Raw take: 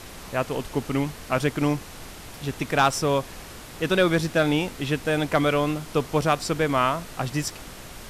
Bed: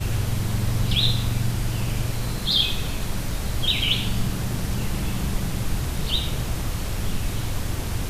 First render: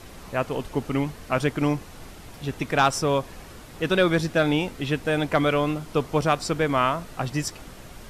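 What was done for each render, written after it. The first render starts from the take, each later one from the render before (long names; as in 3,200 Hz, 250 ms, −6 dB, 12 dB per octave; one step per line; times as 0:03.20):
broadband denoise 6 dB, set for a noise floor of −42 dBFS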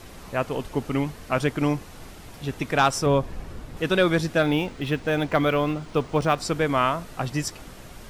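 0:03.06–0:03.77: spectral tilt −2 dB per octave
0:04.42–0:06.38: linearly interpolated sample-rate reduction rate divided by 3×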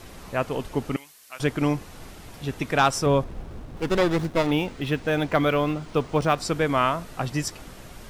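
0:00.96–0:01.40: first difference
0:03.24–0:04.51: windowed peak hold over 17 samples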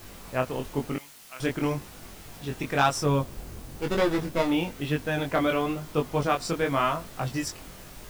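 bit-depth reduction 8 bits, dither triangular
chorus effect 1 Hz, delay 20 ms, depth 3.8 ms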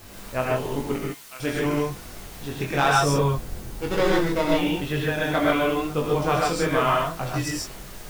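reverb whose tail is shaped and stops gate 170 ms rising, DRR −2.5 dB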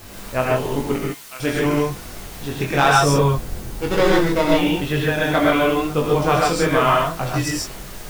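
level +5 dB
brickwall limiter −3 dBFS, peak gain reduction 2 dB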